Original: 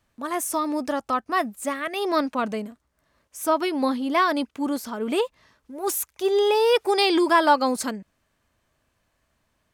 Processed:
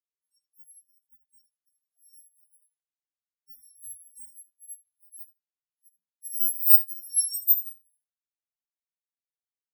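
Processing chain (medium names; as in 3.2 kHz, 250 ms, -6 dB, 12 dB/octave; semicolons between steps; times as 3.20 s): bit-reversed sample order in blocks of 256 samples; peaking EQ 3.3 kHz -13.5 dB 1.4 oct; feedback delay 77 ms, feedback 47%, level -4 dB; spectral contrast expander 4:1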